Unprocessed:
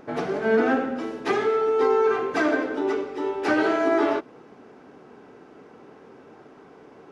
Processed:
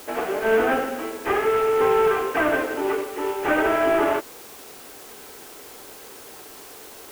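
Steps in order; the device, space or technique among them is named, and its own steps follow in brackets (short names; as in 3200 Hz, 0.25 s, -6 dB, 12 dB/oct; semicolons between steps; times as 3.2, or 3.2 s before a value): army field radio (BPF 390–3400 Hz; CVSD 16 kbps; white noise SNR 20 dB); gain +4 dB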